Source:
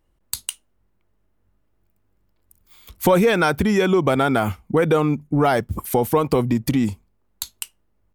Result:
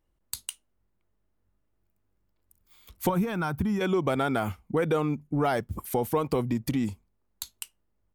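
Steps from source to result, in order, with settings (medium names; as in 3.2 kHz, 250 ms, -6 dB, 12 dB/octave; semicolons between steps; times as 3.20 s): 3.09–3.81 s: ten-band graphic EQ 125 Hz +6 dB, 500 Hz -11 dB, 1 kHz +3 dB, 2 kHz -8 dB, 4 kHz -7 dB, 8 kHz -8 dB; trim -8 dB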